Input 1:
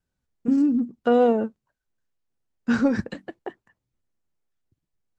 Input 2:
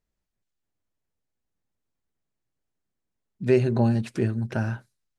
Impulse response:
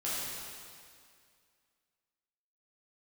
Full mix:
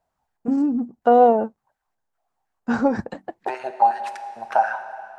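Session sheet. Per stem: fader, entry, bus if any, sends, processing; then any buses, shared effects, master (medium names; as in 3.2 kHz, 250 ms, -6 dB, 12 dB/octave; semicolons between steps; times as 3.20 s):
-2.0 dB, 0.00 s, no send, peaking EQ 3 kHz -4 dB 1.7 oct
-1.0 dB, 0.00 s, send -13 dB, compression 3:1, threshold -25 dBFS, peak gain reduction 8.5 dB; trance gate "xxxx.xxxx..x" 162 bpm; step-sequenced high-pass 11 Hz 690–1800 Hz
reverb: on, RT60 2.2 s, pre-delay 5 ms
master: peaking EQ 790 Hz +14.5 dB 0.98 oct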